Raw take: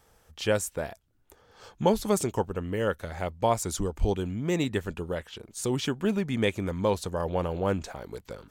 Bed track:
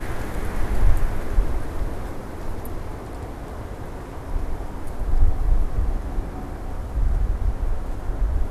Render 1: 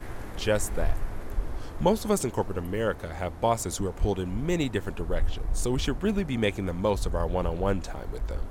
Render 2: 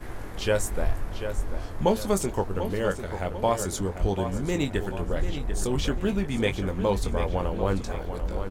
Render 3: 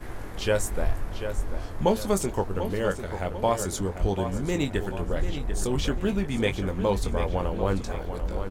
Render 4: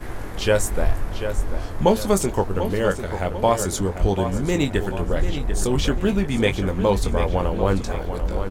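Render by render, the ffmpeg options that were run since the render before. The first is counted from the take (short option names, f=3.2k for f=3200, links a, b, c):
-filter_complex "[1:a]volume=-9.5dB[a];[0:a][a]amix=inputs=2:normalize=0"
-filter_complex "[0:a]asplit=2[a][b];[b]adelay=21,volume=-9dB[c];[a][c]amix=inputs=2:normalize=0,asplit=2[d][e];[e]adelay=743,lowpass=f=4.9k:p=1,volume=-9dB,asplit=2[f][g];[g]adelay=743,lowpass=f=4.9k:p=1,volume=0.47,asplit=2[h][i];[i]adelay=743,lowpass=f=4.9k:p=1,volume=0.47,asplit=2[j][k];[k]adelay=743,lowpass=f=4.9k:p=1,volume=0.47,asplit=2[l][m];[m]adelay=743,lowpass=f=4.9k:p=1,volume=0.47[n];[d][f][h][j][l][n]amix=inputs=6:normalize=0"
-af anull
-af "volume=5.5dB"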